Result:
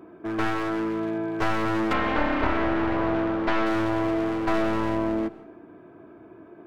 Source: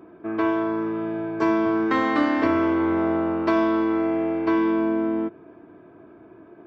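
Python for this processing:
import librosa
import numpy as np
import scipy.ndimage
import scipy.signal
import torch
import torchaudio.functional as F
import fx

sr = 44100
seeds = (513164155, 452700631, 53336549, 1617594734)

y = np.minimum(x, 2.0 * 10.0 ** (-24.5 / 20.0) - x)
y = fx.lowpass(y, sr, hz=fx.line((1.92, 2700.0), (3.65, 4200.0)), slope=12, at=(1.92, 3.65), fade=0.02)
y = fx.rev_plate(y, sr, seeds[0], rt60_s=0.53, hf_ratio=0.9, predelay_ms=110, drr_db=17.5)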